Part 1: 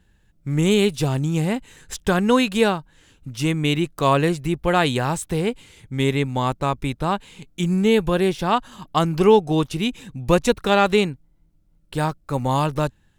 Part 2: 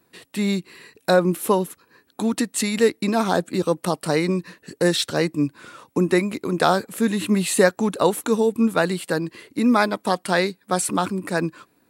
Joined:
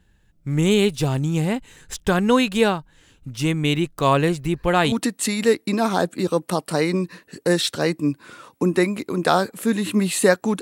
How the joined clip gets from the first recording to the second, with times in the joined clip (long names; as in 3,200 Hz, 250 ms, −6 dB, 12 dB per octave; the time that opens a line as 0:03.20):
part 1
0:04.39: mix in part 2 from 0:01.74 0.53 s −7.5 dB
0:04.92: continue with part 2 from 0:02.27